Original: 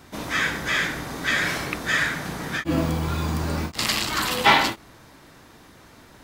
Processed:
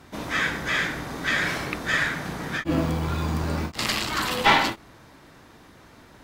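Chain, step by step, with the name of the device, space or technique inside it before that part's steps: tube preamp driven hard (valve stage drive 9 dB, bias 0.55; treble shelf 4.8 kHz -5.5 dB); trim +2 dB

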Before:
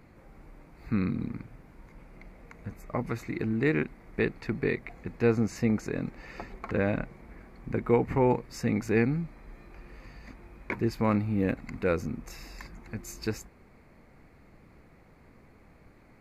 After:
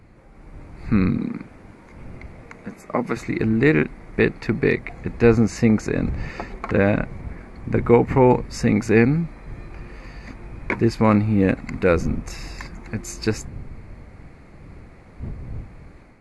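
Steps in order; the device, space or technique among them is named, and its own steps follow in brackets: 1.18–3.17 s: high-pass 170 Hz 24 dB/octave; smartphone video outdoors (wind noise 99 Hz -46 dBFS; level rider gain up to 6.5 dB; trim +3 dB; AAC 96 kbps 24 kHz)

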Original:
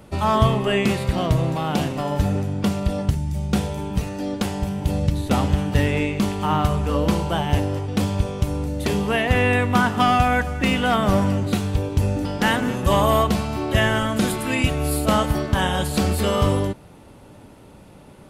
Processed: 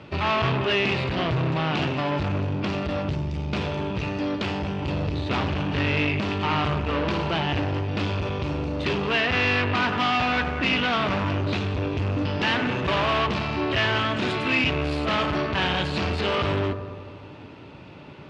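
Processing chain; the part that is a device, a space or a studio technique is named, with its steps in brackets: analogue delay pedal into a guitar amplifier (bucket-brigade echo 93 ms, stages 1024, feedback 69%, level -15 dB; valve stage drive 25 dB, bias 0.4; cabinet simulation 98–4600 Hz, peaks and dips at 210 Hz -8 dB, 510 Hz -5 dB, 770 Hz -4 dB, 2.6 kHz +6 dB); trim +6 dB

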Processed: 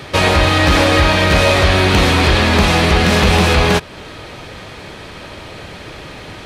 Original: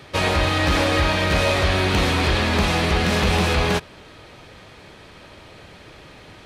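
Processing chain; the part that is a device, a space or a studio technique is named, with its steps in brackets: parallel compression (in parallel at 0 dB: compression, threshold -30 dBFS, peak gain reduction 14 dB); on the sum: trim +5.5 dB

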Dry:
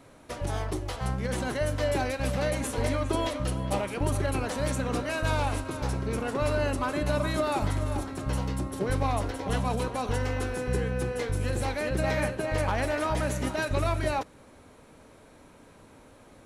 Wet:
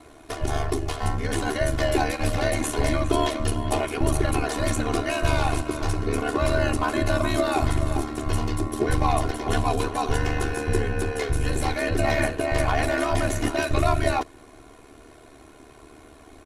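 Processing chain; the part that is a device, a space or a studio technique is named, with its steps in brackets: ring-modulated robot voice (ring modulator 37 Hz; comb 2.8 ms, depth 72%); trim +6.5 dB

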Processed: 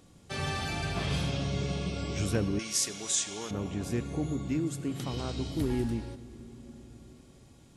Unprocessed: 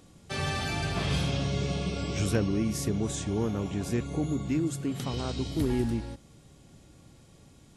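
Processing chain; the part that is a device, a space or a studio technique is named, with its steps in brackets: compressed reverb return (on a send at -6 dB: reverberation RT60 2.7 s, pre-delay 69 ms + compression, threshold -35 dBFS, peak gain reduction 12.5 dB); 2.59–3.51 s: on the sum: frequency weighting ITU-R 468; trim -2.5 dB

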